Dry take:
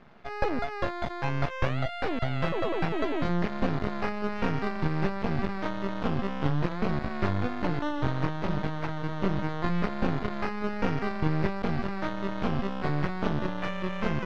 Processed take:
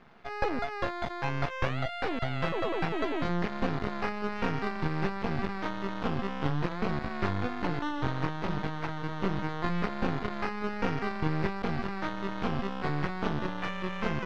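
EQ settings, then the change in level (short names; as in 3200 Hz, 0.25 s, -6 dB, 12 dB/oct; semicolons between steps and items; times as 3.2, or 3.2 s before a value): low shelf 360 Hz -4 dB; notch 600 Hz, Q 12; 0.0 dB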